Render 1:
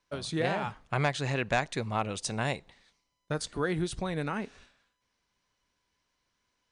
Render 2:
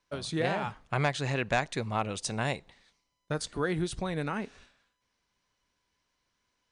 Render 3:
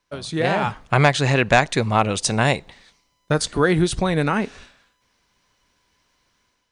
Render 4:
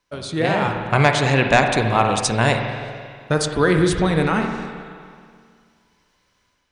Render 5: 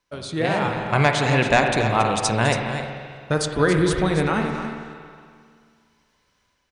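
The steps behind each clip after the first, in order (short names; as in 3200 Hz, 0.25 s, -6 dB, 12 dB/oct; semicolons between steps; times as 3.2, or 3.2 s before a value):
nothing audible
AGC gain up to 8.5 dB; gain +4 dB
spring tank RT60 2.1 s, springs 44/53 ms, chirp 50 ms, DRR 4 dB
echo 0.278 s -9.5 dB; gain -2.5 dB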